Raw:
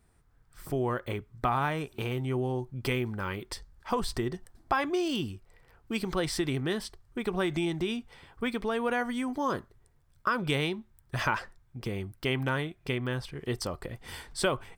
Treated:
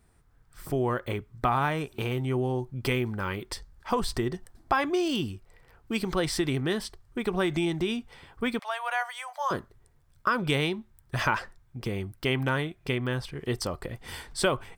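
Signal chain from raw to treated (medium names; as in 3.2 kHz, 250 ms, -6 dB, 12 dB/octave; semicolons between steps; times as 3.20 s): 8.59–9.51 s: steep high-pass 580 Hz 72 dB/octave; trim +2.5 dB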